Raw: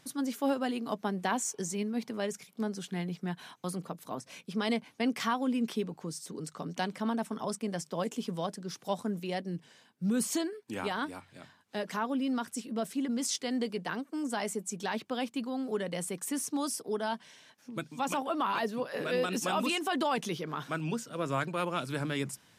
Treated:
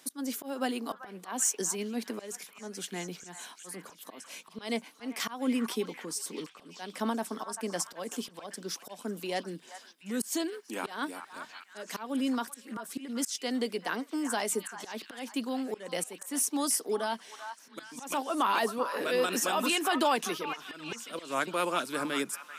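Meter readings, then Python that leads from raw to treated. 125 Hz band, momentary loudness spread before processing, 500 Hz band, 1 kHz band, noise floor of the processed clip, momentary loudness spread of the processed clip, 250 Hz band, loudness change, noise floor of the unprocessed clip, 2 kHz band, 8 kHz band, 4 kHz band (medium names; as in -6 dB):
-9.5 dB, 9 LU, 0.0 dB, +1.0 dB, -57 dBFS, 16 LU, -2.0 dB, +1.0 dB, -63 dBFS, +1.5 dB, +5.0 dB, +2.5 dB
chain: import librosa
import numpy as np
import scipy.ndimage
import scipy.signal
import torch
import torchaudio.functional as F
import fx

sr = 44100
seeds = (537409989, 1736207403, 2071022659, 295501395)

y = scipy.signal.sosfilt(scipy.signal.butter(4, 230.0, 'highpass', fs=sr, output='sos'), x)
y = fx.high_shelf(y, sr, hz=7400.0, db=10.0)
y = fx.auto_swell(y, sr, attack_ms=214.0)
y = fx.echo_stepped(y, sr, ms=389, hz=1200.0, octaves=0.7, feedback_pct=70, wet_db=-6.5)
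y = fx.am_noise(y, sr, seeds[0], hz=5.7, depth_pct=55)
y = y * librosa.db_to_amplitude(4.5)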